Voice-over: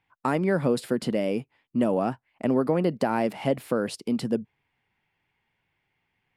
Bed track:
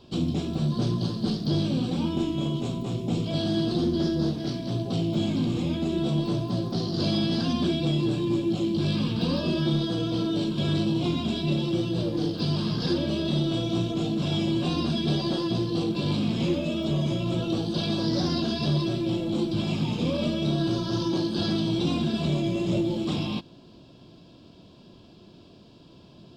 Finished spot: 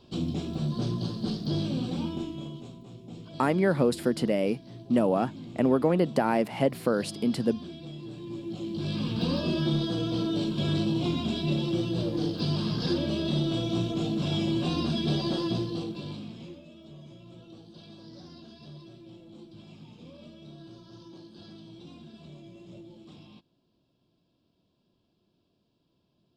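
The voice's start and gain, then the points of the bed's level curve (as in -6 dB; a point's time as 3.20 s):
3.15 s, 0.0 dB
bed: 1.99 s -4 dB
2.82 s -16.5 dB
8.01 s -16.5 dB
9.21 s -2 dB
15.52 s -2 dB
16.67 s -22 dB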